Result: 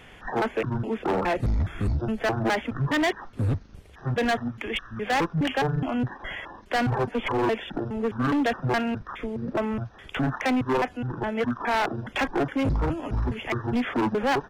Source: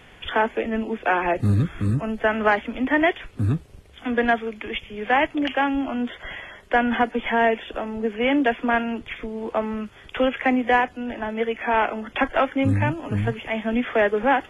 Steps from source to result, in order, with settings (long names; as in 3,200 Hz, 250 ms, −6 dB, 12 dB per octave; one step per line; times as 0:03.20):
pitch shifter gated in a rhythm −11 semitones, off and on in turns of 208 ms
gain into a clipping stage and back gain 20.5 dB